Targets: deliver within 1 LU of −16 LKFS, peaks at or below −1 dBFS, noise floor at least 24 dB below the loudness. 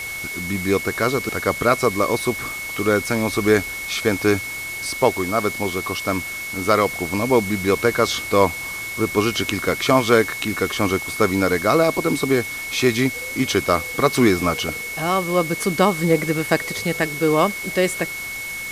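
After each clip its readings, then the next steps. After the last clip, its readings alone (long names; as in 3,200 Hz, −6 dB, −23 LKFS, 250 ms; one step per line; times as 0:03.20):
interfering tone 2,200 Hz; level of the tone −28 dBFS; background noise floor −30 dBFS; target noise floor −45 dBFS; integrated loudness −20.5 LKFS; sample peak −1.0 dBFS; target loudness −16.0 LKFS
→ notch filter 2,200 Hz, Q 30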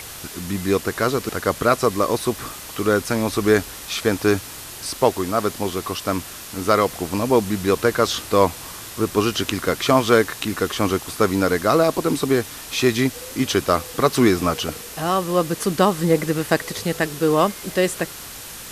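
interfering tone none found; background noise floor −36 dBFS; target noise floor −45 dBFS
→ broadband denoise 9 dB, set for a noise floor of −36 dBFS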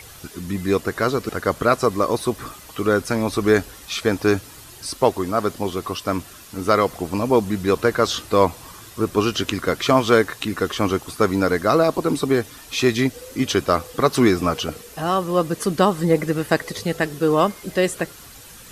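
background noise floor −42 dBFS; target noise floor −45 dBFS
→ broadband denoise 6 dB, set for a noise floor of −42 dBFS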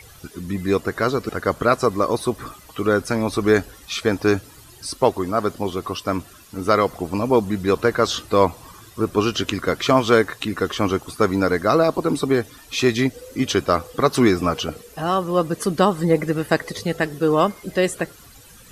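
background noise floor −46 dBFS; integrated loudness −21.0 LKFS; sample peak −1.5 dBFS; target loudness −16.0 LKFS
→ level +5 dB
brickwall limiter −1 dBFS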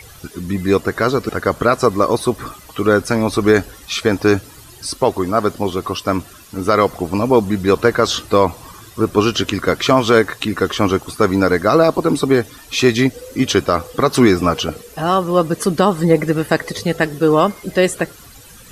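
integrated loudness −16.5 LKFS; sample peak −1.0 dBFS; background noise floor −41 dBFS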